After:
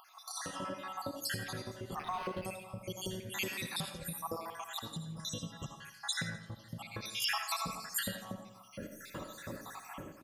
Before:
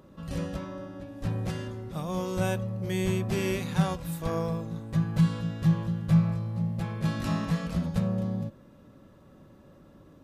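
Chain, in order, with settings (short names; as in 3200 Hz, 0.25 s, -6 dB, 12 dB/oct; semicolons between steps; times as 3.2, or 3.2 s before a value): random spectral dropouts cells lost 74%; 4.79–5.25 resonator 160 Hz, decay 1.5 s, mix 90%; 5.95–6.55 high shelf 7600 Hz -10 dB; compressor 12:1, threshold -56 dBFS, peak gain reduction 33 dB; tilt +2.5 dB/oct; reverb RT60 0.50 s, pre-delay 35 ms, DRR 6 dB; AGC gain up to 15 dB; feedback echo 85 ms, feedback 51%, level -14.5 dB; 1.96–2.45 decimation joined by straight lines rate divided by 6×; gain +6.5 dB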